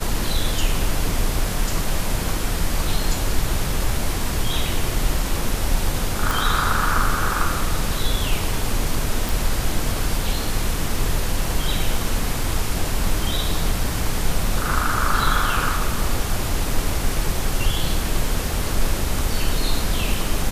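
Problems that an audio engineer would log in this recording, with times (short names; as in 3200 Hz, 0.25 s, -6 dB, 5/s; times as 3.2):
6.31 pop
9.29 pop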